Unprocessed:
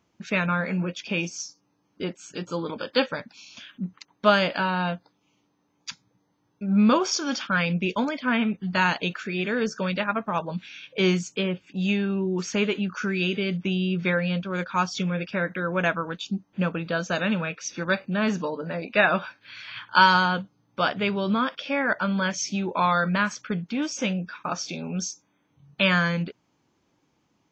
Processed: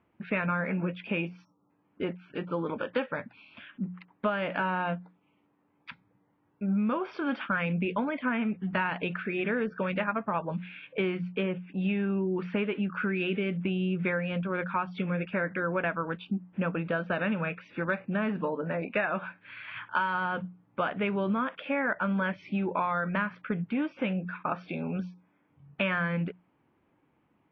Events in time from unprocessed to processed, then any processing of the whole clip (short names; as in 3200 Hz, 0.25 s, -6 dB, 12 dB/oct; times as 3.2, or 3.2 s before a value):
1.44–1.7 spectral delete 1400–5400 Hz
whole clip: inverse Chebyshev low-pass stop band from 6300 Hz, stop band 50 dB; notches 60/120/180 Hz; compressor 10:1, threshold -25 dBFS